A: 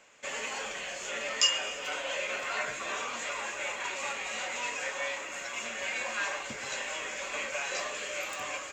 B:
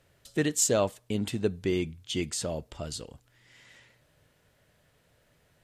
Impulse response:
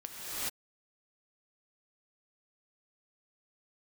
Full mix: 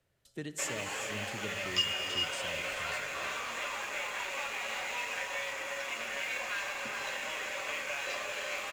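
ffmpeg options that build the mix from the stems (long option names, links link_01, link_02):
-filter_complex "[0:a]acrossover=split=3600[link_01][link_02];[link_02]acompressor=threshold=-53dB:ratio=4:attack=1:release=60[link_03];[link_01][link_03]amix=inputs=2:normalize=0,highpass=frequency=310:poles=1,aeval=exprs='sgn(val(0))*max(abs(val(0))-0.00299,0)':channel_layout=same,adelay=350,volume=2dB,asplit=2[link_04][link_05];[link_05]volume=-7.5dB[link_06];[1:a]volume=-13.5dB,asplit=2[link_07][link_08];[link_08]volume=-8.5dB[link_09];[2:a]atrim=start_sample=2205[link_10];[link_06][link_09]amix=inputs=2:normalize=0[link_11];[link_11][link_10]afir=irnorm=-1:irlink=0[link_12];[link_04][link_07][link_12]amix=inputs=3:normalize=0,acrossover=split=150|3000[link_13][link_14][link_15];[link_14]acompressor=threshold=-36dB:ratio=6[link_16];[link_13][link_16][link_15]amix=inputs=3:normalize=0"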